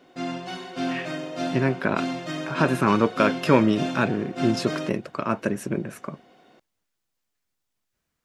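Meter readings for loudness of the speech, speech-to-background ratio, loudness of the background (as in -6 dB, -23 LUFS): -24.5 LUFS, 7.0 dB, -31.5 LUFS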